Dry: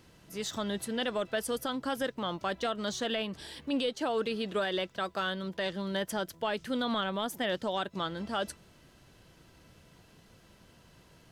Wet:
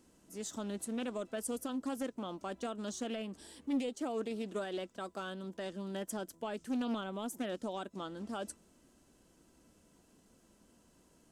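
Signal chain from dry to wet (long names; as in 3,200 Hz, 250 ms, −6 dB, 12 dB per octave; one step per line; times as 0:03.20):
octave-band graphic EQ 125/250/2,000/4,000/8,000 Hz −10/+9/−5/−6/+10 dB
highs frequency-modulated by the lows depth 0.28 ms
level −8 dB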